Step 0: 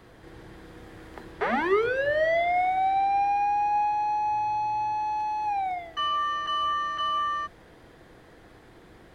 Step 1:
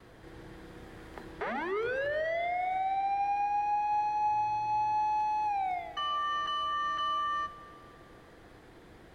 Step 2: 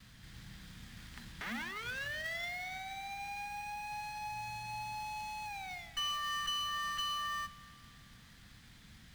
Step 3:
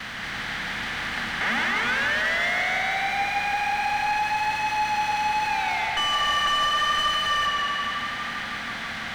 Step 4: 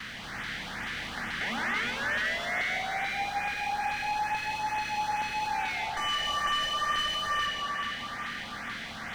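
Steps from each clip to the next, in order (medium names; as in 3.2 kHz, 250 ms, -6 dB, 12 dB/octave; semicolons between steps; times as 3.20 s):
gate with hold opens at -49 dBFS; peak limiter -24 dBFS, peak gain reduction 10 dB; echo whose repeats swap between lows and highs 130 ms, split 1.1 kHz, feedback 67%, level -13.5 dB; trim -2.5 dB
FFT filter 230 Hz 0 dB, 360 Hz -24 dB, 550 Hz -21 dB, 1.3 kHz -6 dB, 3.5 kHz +6 dB, 5.6 kHz +9 dB; short-mantissa float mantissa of 2-bit; sliding maximum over 3 samples
spectral levelling over time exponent 0.6; tape echo 162 ms, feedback 78%, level -3.5 dB, low-pass 5.6 kHz; overdrive pedal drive 14 dB, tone 2.1 kHz, clips at -22 dBFS; trim +8.5 dB
LFO notch saw up 2.3 Hz 580–4700 Hz; trim -4.5 dB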